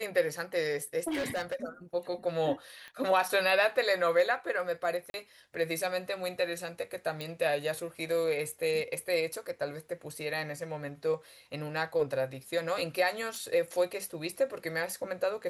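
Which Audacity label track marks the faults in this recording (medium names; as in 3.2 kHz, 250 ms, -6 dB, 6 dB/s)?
1.070000	1.640000	clipped -29 dBFS
2.880000	2.880000	pop -31 dBFS
5.100000	5.140000	dropout 41 ms
7.210000	7.210000	pop
13.360000	13.360000	pop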